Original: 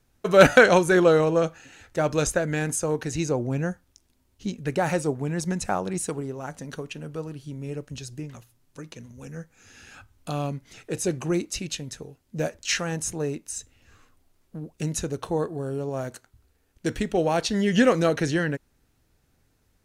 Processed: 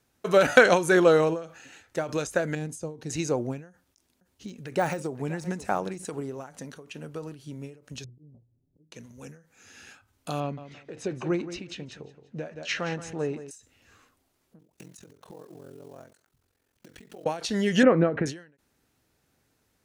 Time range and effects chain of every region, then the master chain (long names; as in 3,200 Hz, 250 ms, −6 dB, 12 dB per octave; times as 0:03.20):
0:02.55–0:03.10: drawn EQ curve 160 Hz 0 dB, 860 Hz −10 dB, 1,500 Hz −17 dB, 4,200 Hz −8 dB, 12,000 Hz −13 dB + one half of a high-frequency compander encoder only
0:03.69–0:06.05: single-tap delay 521 ms −20 dB + de-essing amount 85%
0:08.04–0:08.92: low-shelf EQ 190 Hz +7.5 dB + volume swells 398 ms + Gaussian smoothing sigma 17 samples
0:10.40–0:13.51: low-pass filter 3,200 Hz + repeating echo 172 ms, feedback 28%, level −13 dB
0:14.59–0:17.26: one scale factor per block 5 bits + downward compressor 10 to 1, threshold −38 dBFS + ring modulation 22 Hz
0:17.83–0:18.26: low-pass filter 2,200 Hz 24 dB per octave + low-shelf EQ 440 Hz +7.5 dB
whole clip: high-pass filter 190 Hz 6 dB per octave; every ending faded ahead of time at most 130 dB per second